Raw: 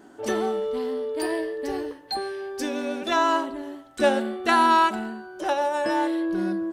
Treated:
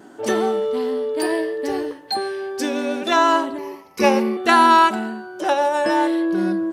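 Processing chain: 3.58–4.37 ripple EQ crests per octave 0.83, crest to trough 17 dB; vibrato 0.7 Hz 10 cents; HPF 98 Hz 12 dB/oct; gain +5.5 dB

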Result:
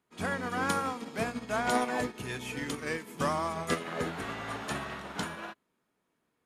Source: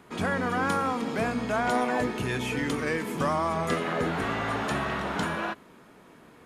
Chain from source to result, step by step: high shelf 3300 Hz +7.5 dB; upward expander 2.5:1, over -40 dBFS; gain -1 dB

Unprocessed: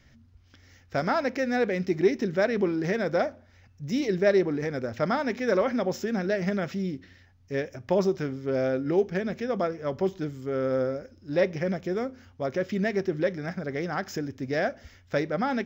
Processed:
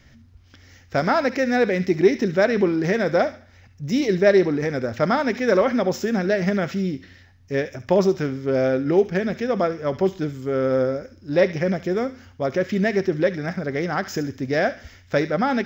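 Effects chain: thin delay 70 ms, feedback 34%, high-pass 1600 Hz, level -11 dB; gain +6 dB

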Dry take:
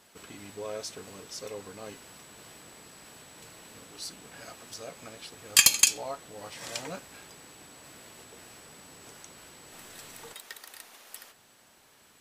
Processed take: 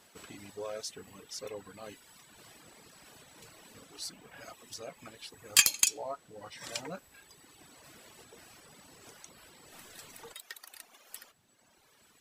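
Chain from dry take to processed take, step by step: reverb removal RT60 1.8 s; core saturation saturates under 3100 Hz; gain -1 dB

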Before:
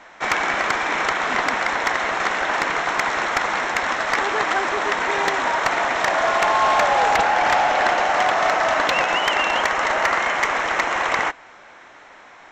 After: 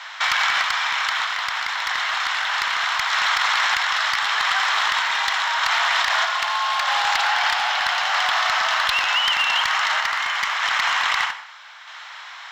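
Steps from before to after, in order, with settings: inverse Chebyshev high-pass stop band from 160 Hz, stop band 80 dB; band shelf 3900 Hz +8 dB 1 oct; in parallel at -0.5 dB: negative-ratio compressor -27 dBFS, ratio -0.5; on the sum: one-sided clip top -11 dBFS, bottom -7 dBFS; random-step tremolo 1.6 Hz, depth 55%; companded quantiser 8-bit; on a send at -12 dB: reverb RT60 0.45 s, pre-delay 73 ms; on the sum: maximiser +9 dB; gain -9 dB

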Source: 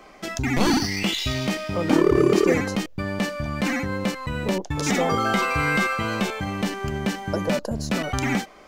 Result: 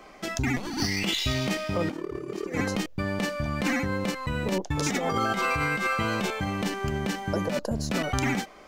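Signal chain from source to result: negative-ratio compressor -23 dBFS, ratio -0.5; gain -3 dB

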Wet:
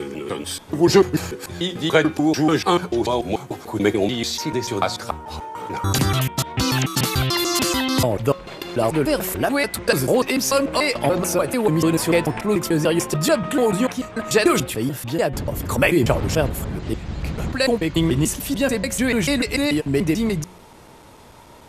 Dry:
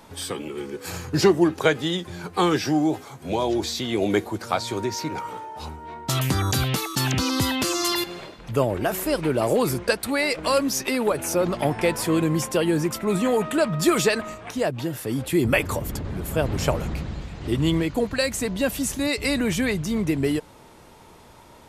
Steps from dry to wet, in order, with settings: slices in reverse order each 0.146 s, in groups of 5; de-hum 181.2 Hz, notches 20; gain +3.5 dB

